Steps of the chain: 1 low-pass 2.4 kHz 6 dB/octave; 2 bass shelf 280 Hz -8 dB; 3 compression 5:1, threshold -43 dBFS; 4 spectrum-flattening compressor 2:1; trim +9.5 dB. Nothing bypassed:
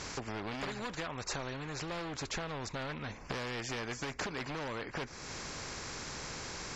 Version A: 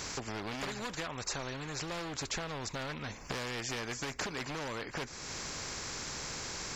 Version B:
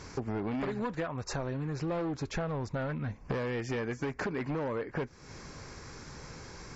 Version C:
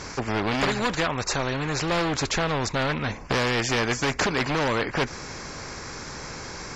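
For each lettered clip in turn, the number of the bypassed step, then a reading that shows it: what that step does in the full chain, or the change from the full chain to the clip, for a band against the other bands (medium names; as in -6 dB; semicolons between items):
1, 8 kHz band +4.5 dB; 4, 4 kHz band -10.5 dB; 3, mean gain reduction 10.0 dB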